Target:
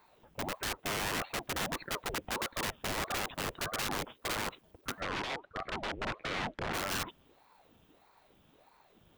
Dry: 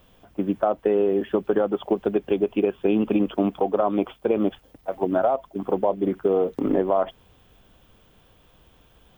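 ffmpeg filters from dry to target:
-filter_complex "[0:a]aeval=exprs='(mod(10.6*val(0)+1,2)-1)/10.6':c=same,asplit=3[a][b][c];[a]afade=t=out:st=5:d=0.02[d];[b]highpass=120,lowpass=3.3k,afade=t=in:st=5:d=0.02,afade=t=out:st=6.73:d=0.02[e];[c]afade=t=in:st=6.73:d=0.02[f];[d][e][f]amix=inputs=3:normalize=0,aeval=exprs='val(0)*sin(2*PI*540*n/s+540*0.8/1.6*sin(2*PI*1.6*n/s))':c=same,volume=-5.5dB"

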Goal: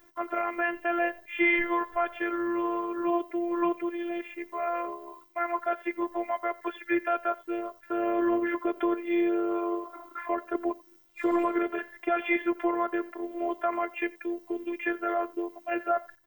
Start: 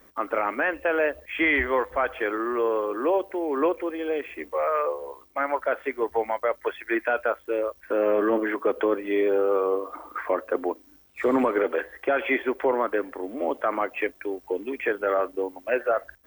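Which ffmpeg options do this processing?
-af "afftfilt=real='hypot(re,im)*cos(PI*b)':imag='0':win_size=512:overlap=0.75,aecho=1:1:89:0.075"

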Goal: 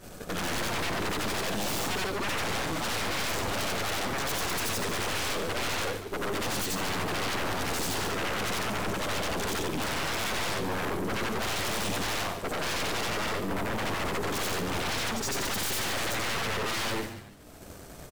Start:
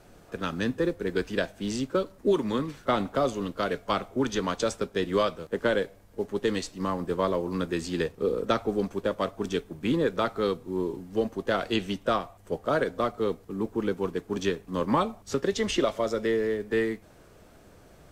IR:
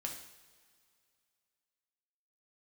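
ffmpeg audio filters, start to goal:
-filter_complex "[0:a]afftfilt=real='re':imag='-im':win_size=8192:overlap=0.75,agate=range=-33dB:threshold=-43dB:ratio=3:detection=peak,highshelf=f=5.1k:g=9,alimiter=limit=-23.5dB:level=0:latency=1:release=21,acompressor=mode=upward:threshold=-46dB:ratio=2.5,aeval=exprs='0.0668*sin(PI/2*5.62*val(0)/0.0668)':c=same,aeval=exprs='(tanh(35.5*val(0)+0.75)-tanh(0.75))/35.5':c=same,asplit=5[a][b][c][d][e];[b]adelay=143,afreqshift=-100,volume=-11dB[f];[c]adelay=286,afreqshift=-200,volume=-19.2dB[g];[d]adelay=429,afreqshift=-300,volume=-27.4dB[h];[e]adelay=572,afreqshift=-400,volume=-35.5dB[i];[a][f][g][h][i]amix=inputs=5:normalize=0,volume=1.5dB"

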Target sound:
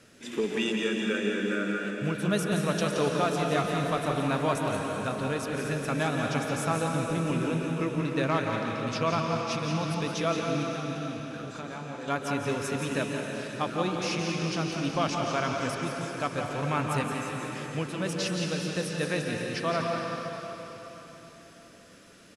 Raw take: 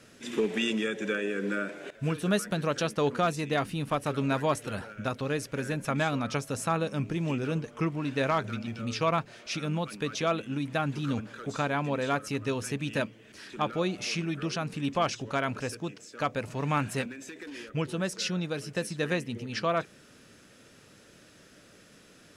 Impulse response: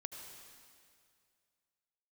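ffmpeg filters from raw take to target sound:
-filter_complex "[0:a]asettb=1/sr,asplit=3[a][b][c];[a]atrim=end=10.634[d];[b]atrim=start=10.63:end=12.08,asetpts=PTS-STARTPTS,afade=t=in:d=0.004:c=qsin,afade=t=out:st=1.446:d=0.004:c=qsin,acompressor=threshold=-36dB:ratio=10[e];[c]atrim=start=12.076[f];[d][e]acrossfade=d=0.004:c1=hsin:c2=qsin[g];[g][f]acrossfade=d=0.004:c1=qsin:c2=hsin,asettb=1/sr,asplit=3[h][i][j];[h]atrim=end=12.884[k];[i]atrim=start=12.88:end=13.54,asetpts=PTS-STARTPTS,afade=t=in:d=0.004:c=qsin,afade=t=out:st=0.656:d=0.004:c=qsin,lowpass=11k[l];[j]atrim=start=13.536[m];[k][l]acrossfade=d=0.004:c1=hsin:c2=qsin[n];[n][m]acrossfade=d=0.004:c1=qsin:c2=hsin,aecho=1:1:173:0.422[o];[1:a]atrim=start_sample=2205,asetrate=24255,aresample=44100[p];[o][p]afir=irnorm=-1:irlink=0"

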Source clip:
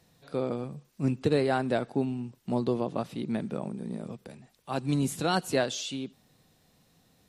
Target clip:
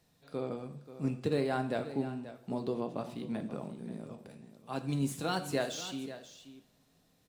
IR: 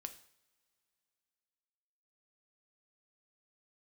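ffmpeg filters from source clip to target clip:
-filter_complex "[0:a]acrossover=split=4300[a][b];[b]acrusher=bits=2:mode=log:mix=0:aa=0.000001[c];[a][c]amix=inputs=2:normalize=0,aecho=1:1:533:0.211[d];[1:a]atrim=start_sample=2205[e];[d][e]afir=irnorm=-1:irlink=0,volume=-2dB"

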